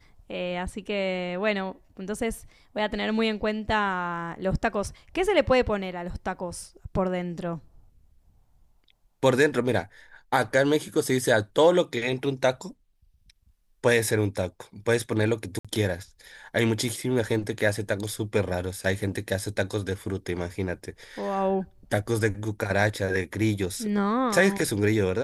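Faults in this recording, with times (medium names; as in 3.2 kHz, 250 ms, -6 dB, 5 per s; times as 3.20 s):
15.59–15.65 s: dropout 56 ms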